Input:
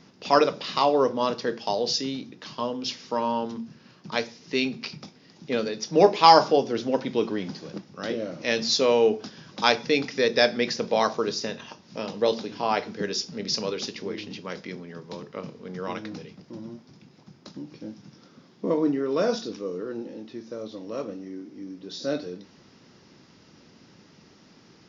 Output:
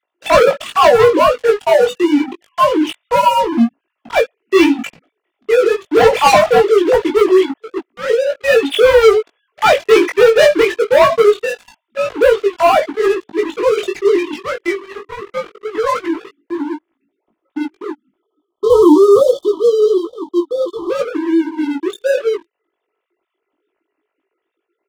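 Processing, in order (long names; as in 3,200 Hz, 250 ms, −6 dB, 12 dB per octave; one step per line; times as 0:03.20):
three sine waves on the formant tracks
notch filter 1,600 Hz, Q 18
comb filter 3 ms, depth 31%
leveller curve on the samples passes 5
time-frequency box erased 0:18.20–0:20.90, 1,300–3,000 Hz
chorus effect 0.24 Hz, delay 17.5 ms, depth 2.8 ms
level +4.5 dB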